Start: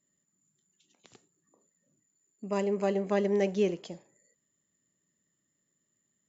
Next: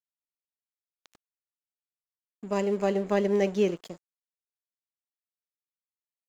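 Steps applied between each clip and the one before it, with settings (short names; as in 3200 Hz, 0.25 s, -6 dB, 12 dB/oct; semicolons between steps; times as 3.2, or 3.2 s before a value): crossover distortion -49 dBFS; gain +3 dB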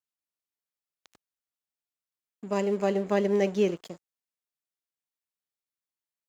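HPF 53 Hz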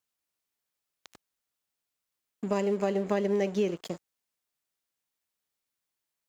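compressor 3:1, threshold -34 dBFS, peak gain reduction 11.5 dB; gain +7 dB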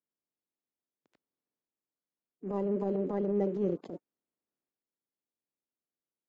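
bin magnitudes rounded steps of 30 dB; band-pass 290 Hz, Q 1.3; transient shaper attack -11 dB, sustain +5 dB; gain +2.5 dB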